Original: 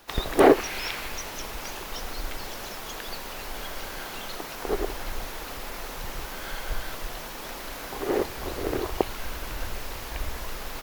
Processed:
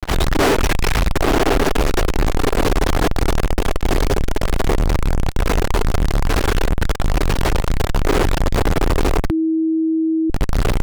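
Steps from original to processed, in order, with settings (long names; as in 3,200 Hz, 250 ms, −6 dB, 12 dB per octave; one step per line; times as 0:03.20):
0:04.01–0:04.51: linear-phase brick-wall band-stop 200–4,400 Hz
0:06.21–0:06.63: low-shelf EQ 200 Hz −9 dB
feedback delay with all-pass diffusion 994 ms, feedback 65%, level −5 dB
flanger 0.84 Hz, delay 5.5 ms, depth 1.9 ms, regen −83%
RIAA equalisation playback
fuzz pedal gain 47 dB, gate −46 dBFS
0:09.30–0:10.30: beep over 321 Hz −14.5 dBFS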